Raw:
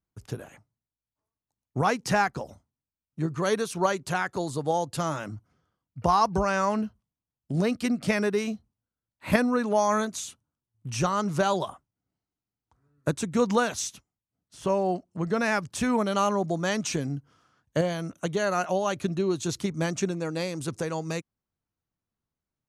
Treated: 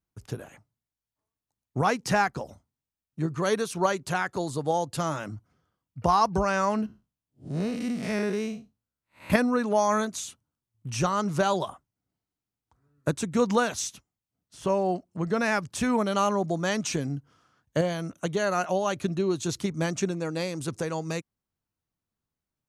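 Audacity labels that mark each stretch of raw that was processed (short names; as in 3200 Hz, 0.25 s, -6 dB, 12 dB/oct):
6.860000	9.300000	time blur width 0.144 s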